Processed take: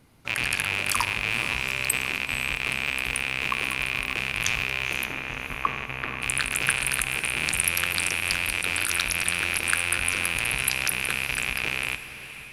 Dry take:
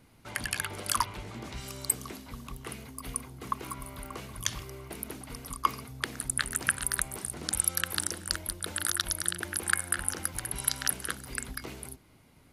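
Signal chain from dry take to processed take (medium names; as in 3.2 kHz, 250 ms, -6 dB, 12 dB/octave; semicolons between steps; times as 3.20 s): rattle on loud lows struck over -47 dBFS, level -14 dBFS; 5.06–6.22 s: low-pass 1.8 kHz 12 dB/octave; echo that smears into a reverb 503 ms, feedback 48%, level -13 dB; on a send at -12.5 dB: reverberation RT60 1.4 s, pre-delay 3 ms; on the sum: trim +1.5 dB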